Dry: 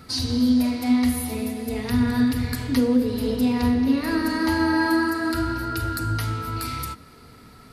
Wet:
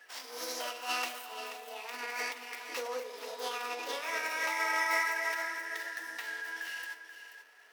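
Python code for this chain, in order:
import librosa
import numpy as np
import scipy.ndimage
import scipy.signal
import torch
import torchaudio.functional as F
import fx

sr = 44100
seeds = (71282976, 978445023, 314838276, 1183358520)

y = scipy.signal.medfilt(x, 9)
y = fx.formant_shift(y, sr, semitones=4)
y = scipy.signal.sosfilt(scipy.signal.bessel(4, 920.0, 'highpass', norm='mag', fs=sr, output='sos'), y)
y = y + 10.0 ** (-10.5 / 20.0) * np.pad(y, (int(482 * sr / 1000.0), 0))[:len(y)]
y = y * 10.0 ** (-5.5 / 20.0)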